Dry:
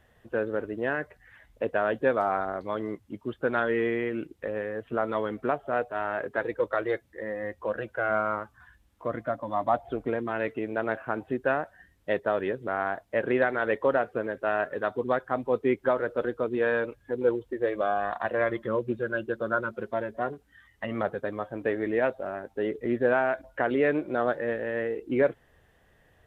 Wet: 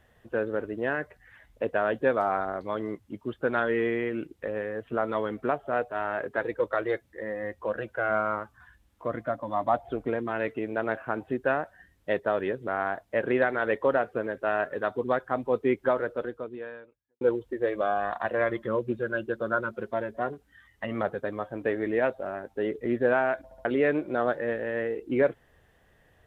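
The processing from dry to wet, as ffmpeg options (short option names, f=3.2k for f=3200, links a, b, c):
-filter_complex "[0:a]asplit=5[a][b][c][d][e];[a]atrim=end=17.21,asetpts=PTS-STARTPTS,afade=t=out:st=15.99:d=1.22:c=qua[f];[b]atrim=start=17.21:end=23.512,asetpts=PTS-STARTPTS,afade=t=in:d=0.004:c=hsin[g];[c]atrim=start=23.438:end=23.512[h];[d]atrim=start=23.438:end=23.512[i];[e]atrim=start=23.648[j];[f][g]concat=n=2:v=0:a=1[k];[k][h]acrossfade=d=0.004:c1=hsin:c2=hsin[l];[l][i]acrossfade=d=0.004:c1=hsin:c2=hsin[m];[m][j]acrossfade=d=0.004:c1=hsin:c2=hsin"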